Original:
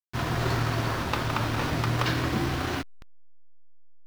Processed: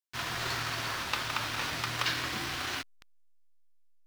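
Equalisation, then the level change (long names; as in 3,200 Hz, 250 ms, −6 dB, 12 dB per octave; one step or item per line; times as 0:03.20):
tilt shelving filter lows −9.5 dB
high-shelf EQ 9,700 Hz −4.5 dB
−6.0 dB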